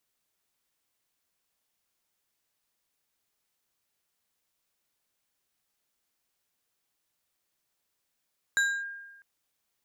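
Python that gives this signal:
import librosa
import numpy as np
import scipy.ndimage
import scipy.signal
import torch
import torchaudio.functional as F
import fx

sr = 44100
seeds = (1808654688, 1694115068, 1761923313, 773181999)

y = fx.fm2(sr, length_s=0.65, level_db=-20.0, carrier_hz=1610.0, ratio=3.43, index=0.57, index_s=0.27, decay_s=1.16, shape='linear')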